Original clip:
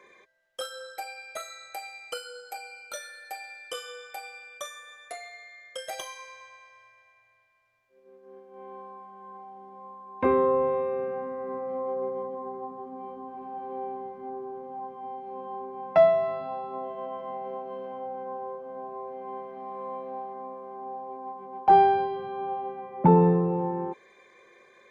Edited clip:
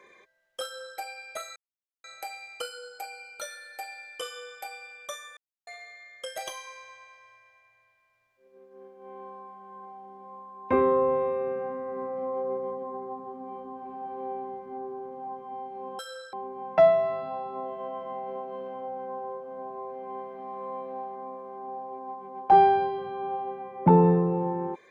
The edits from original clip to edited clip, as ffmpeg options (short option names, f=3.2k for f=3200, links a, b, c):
-filter_complex "[0:a]asplit=6[a][b][c][d][e][f];[a]atrim=end=1.56,asetpts=PTS-STARTPTS,afade=t=out:st=1.556:d=0.004:c=hsin,apad=pad_dur=0.48[g];[b]atrim=start=1.56:end=4.89,asetpts=PTS-STARTPTS,afade=t=in:d=0.004:c=hsin,afade=t=out:st=3.326:d=0.004:c=hsin[h];[c]atrim=start=4.89:end=5.19,asetpts=PTS-STARTPTS,volume=0[i];[d]atrim=start=5.19:end=15.512,asetpts=PTS-STARTPTS,afade=t=in:d=0.004:c=hsin[j];[e]atrim=start=0.638:end=0.982[k];[f]atrim=start=15.508[l];[g][h][i][j]concat=n=4:v=0:a=1[m];[m][k]acrossfade=d=0.004:c1=hsin:c2=hsin[n];[n][l]acrossfade=d=0.004:c1=hsin:c2=hsin"